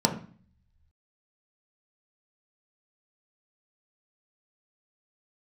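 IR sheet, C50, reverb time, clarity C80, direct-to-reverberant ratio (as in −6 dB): 10.5 dB, 0.45 s, 14.5 dB, 1.5 dB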